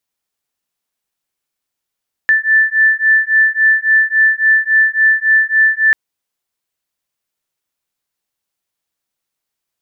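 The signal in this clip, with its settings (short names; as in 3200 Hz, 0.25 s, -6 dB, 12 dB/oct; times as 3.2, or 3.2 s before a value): beating tones 1760 Hz, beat 3.6 Hz, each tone -12 dBFS 3.64 s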